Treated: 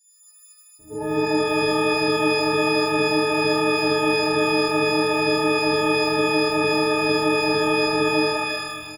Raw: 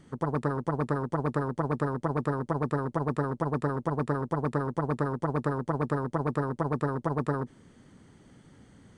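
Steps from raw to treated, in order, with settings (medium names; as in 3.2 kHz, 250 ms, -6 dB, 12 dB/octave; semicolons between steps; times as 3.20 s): partials quantised in pitch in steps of 6 st; FFT filter 120 Hz 0 dB, 190 Hz -12 dB, 360 Hz +8 dB, 1.2 kHz -15 dB, 3.1 kHz -22 dB, 7.8 kHz -3 dB; compression 1.5:1, threshold -41 dBFS, peak gain reduction 7 dB; bands offset in time highs, lows 790 ms, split 3 kHz; pitch-shifted reverb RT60 1.3 s, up +12 st, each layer -2 dB, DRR -10.5 dB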